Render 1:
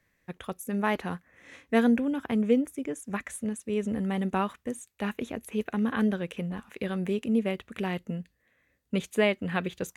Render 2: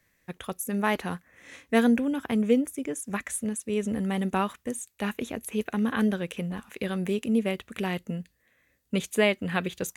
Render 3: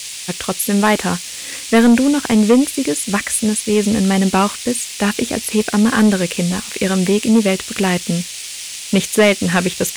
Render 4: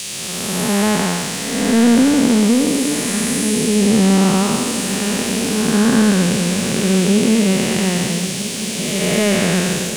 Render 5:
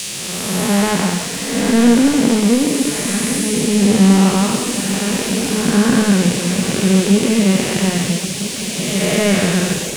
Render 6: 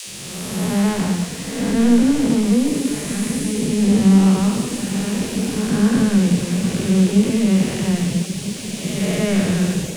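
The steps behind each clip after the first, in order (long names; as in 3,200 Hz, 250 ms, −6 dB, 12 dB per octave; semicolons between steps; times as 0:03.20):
high-shelf EQ 4,300 Hz +8 dB; level +1 dB
noise in a band 2,200–10,000 Hz −42 dBFS; leveller curve on the samples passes 2; level +6 dB
spectrum smeared in time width 458 ms; on a send: feedback echo with a long and a short gap by turns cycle 1,297 ms, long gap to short 1.5 to 1, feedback 63%, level −15 dB; on the sum: level +4 dB
on a send at −10 dB: convolution reverb RT60 0.90 s, pre-delay 6 ms; on the sum: reverb reduction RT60 0.62 s; level +2 dB
low-shelf EQ 240 Hz +11 dB; all-pass dispersion lows, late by 79 ms, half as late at 320 Hz; level −8 dB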